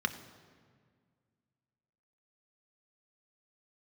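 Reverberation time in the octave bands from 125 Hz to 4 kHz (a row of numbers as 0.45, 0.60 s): 2.6, 2.4, 2.0, 1.8, 1.6, 1.3 s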